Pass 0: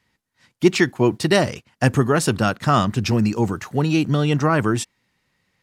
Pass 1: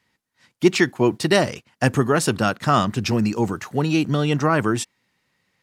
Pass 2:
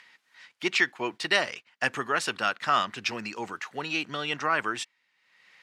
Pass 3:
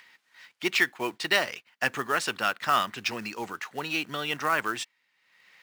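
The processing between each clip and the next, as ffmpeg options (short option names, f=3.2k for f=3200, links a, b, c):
-af "lowshelf=f=84:g=-10"
-af "acompressor=mode=upward:threshold=-40dB:ratio=2.5,bandpass=f=2.3k:t=q:w=0.89:csg=0"
-af "acrusher=bits=4:mode=log:mix=0:aa=0.000001"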